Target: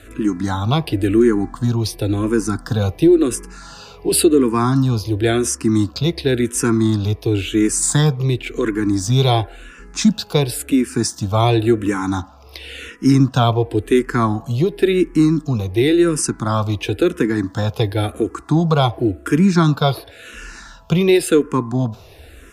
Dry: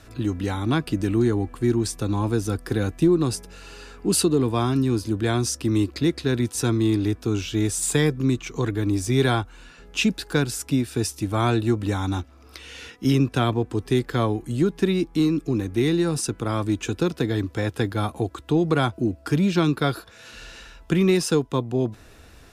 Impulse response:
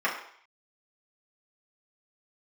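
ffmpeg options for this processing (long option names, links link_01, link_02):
-filter_complex "[0:a]asplit=2[link_01][link_02];[link_02]lowpass=2800[link_03];[1:a]atrim=start_sample=2205,asetrate=37044,aresample=44100[link_04];[link_03][link_04]afir=irnorm=-1:irlink=0,volume=-28dB[link_05];[link_01][link_05]amix=inputs=2:normalize=0,asplit=2[link_06][link_07];[link_07]afreqshift=-0.94[link_08];[link_06][link_08]amix=inputs=2:normalize=1,volume=8.5dB"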